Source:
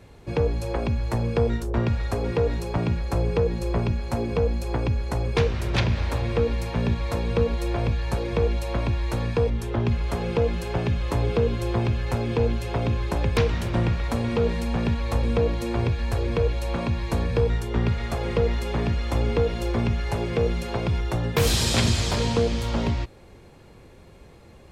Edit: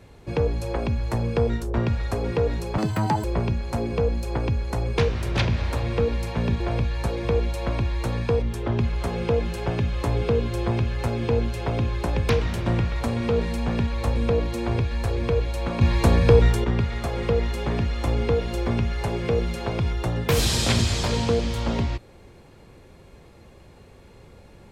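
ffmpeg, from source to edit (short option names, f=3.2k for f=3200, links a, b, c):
-filter_complex "[0:a]asplit=6[a][b][c][d][e][f];[a]atrim=end=2.784[g];[b]atrim=start=2.78:end=3.63,asetpts=PTS-STARTPTS,asetrate=81144,aresample=44100,atrim=end_sample=20372,asetpts=PTS-STARTPTS[h];[c]atrim=start=3.626:end=6.992[i];[d]atrim=start=7.678:end=16.892[j];[e]atrim=start=16.888:end=17.722,asetpts=PTS-STARTPTS,volume=7dB[k];[f]atrim=start=17.718[l];[g][h]acrossfade=d=0.004:c1=hsin:c2=hsin[m];[m][i]acrossfade=d=0.004:c1=hsin:c2=hsin[n];[n][j]acrossfade=d=0.004:c1=hsin:c2=hsin[o];[o][k]acrossfade=d=0.004:c1=hsin:c2=hsin[p];[p][l]acrossfade=d=0.004:c1=hsin:c2=hsin"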